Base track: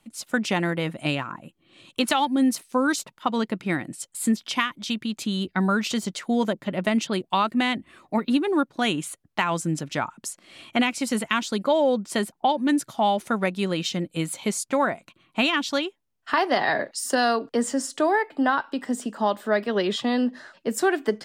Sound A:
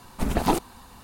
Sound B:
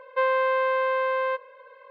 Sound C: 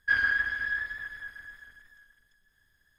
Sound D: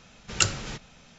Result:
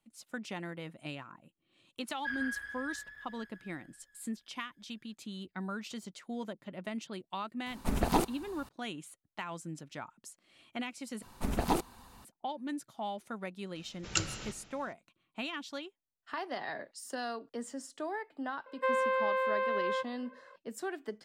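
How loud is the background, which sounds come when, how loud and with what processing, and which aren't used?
base track -16.5 dB
2.17 s: add C -12.5 dB
7.66 s: add A -5.5 dB
11.22 s: replace with A -7.5 dB
13.75 s: add D -8.5 dB + algorithmic reverb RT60 0.91 s, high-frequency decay 0.85×, pre-delay 95 ms, DRR 12.5 dB
18.66 s: add B -7 dB

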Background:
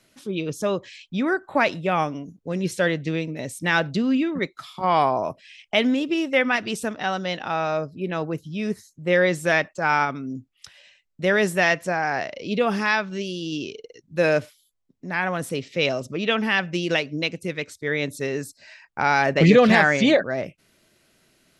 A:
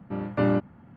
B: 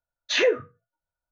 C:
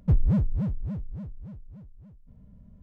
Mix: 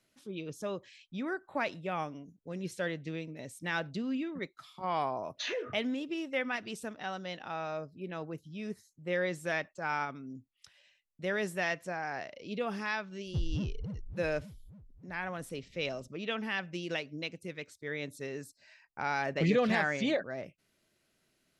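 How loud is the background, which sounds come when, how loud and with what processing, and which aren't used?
background -13 dB
5.10 s: add B -5.5 dB + compression 3:1, threshold -30 dBFS
13.26 s: add C -12 dB
not used: A

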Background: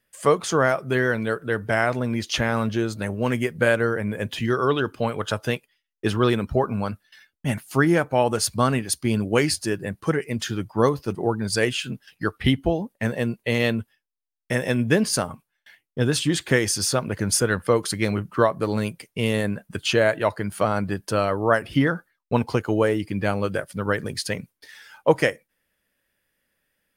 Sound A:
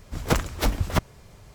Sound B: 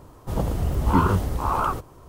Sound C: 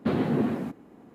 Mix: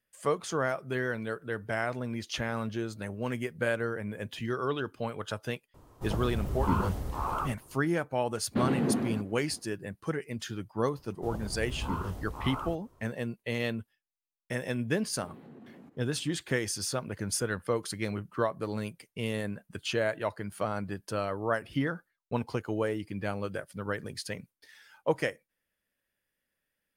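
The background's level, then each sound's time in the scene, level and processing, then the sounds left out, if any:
background -10 dB
5.74 s: add B -9 dB
8.50 s: add C -3 dB, fades 0.05 s
10.95 s: add B -14.5 dB
15.18 s: add C -10.5 dB + compression, threshold -38 dBFS
not used: A

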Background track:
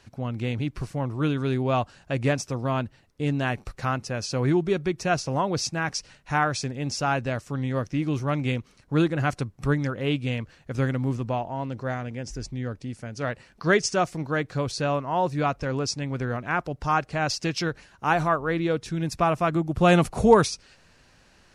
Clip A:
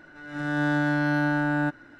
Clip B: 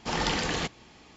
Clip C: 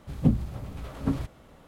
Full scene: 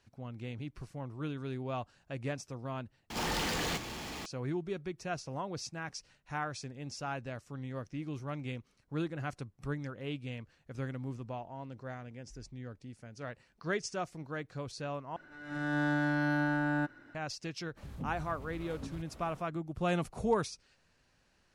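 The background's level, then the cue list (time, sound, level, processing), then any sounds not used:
background track -13.5 dB
3.10 s: replace with B -14.5 dB + power-law waveshaper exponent 0.35
15.16 s: replace with A -6.5 dB
17.76 s: add C -1 dB, fades 0.02 s + compression 2.5:1, threshold -45 dBFS

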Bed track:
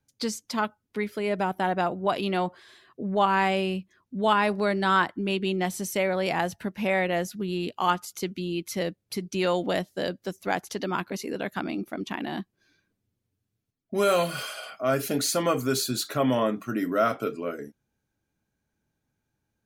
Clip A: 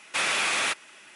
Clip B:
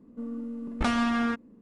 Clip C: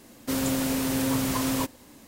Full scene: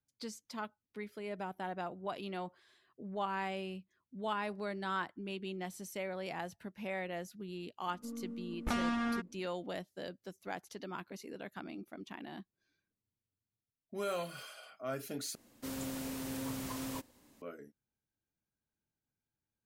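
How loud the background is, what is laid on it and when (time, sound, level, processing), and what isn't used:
bed track -14.5 dB
7.86 s: add B -8 dB
15.35 s: replace with C -14 dB
not used: A

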